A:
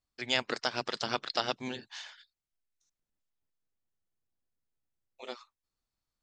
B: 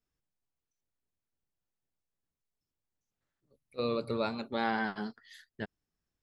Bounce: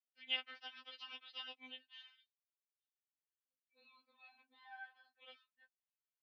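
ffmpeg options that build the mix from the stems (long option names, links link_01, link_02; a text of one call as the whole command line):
ffmpeg -i stem1.wav -i stem2.wav -filter_complex "[0:a]equalizer=frequency=3000:width_type=o:width=0.3:gain=9.5,volume=-2dB,asplit=2[link_01][link_02];[1:a]aecho=1:1:2.7:0.6,volume=-9dB[link_03];[link_02]apad=whole_len=274499[link_04];[link_03][link_04]sidechaincompress=threshold=-47dB:ratio=4:attack=16:release=614[link_05];[link_01][link_05]amix=inputs=2:normalize=0,lowpass=frequency=2900:width=0.5412,lowpass=frequency=2900:width=1.3066,aderivative,afftfilt=real='re*3.46*eq(mod(b,12),0)':imag='im*3.46*eq(mod(b,12),0)':win_size=2048:overlap=0.75" out.wav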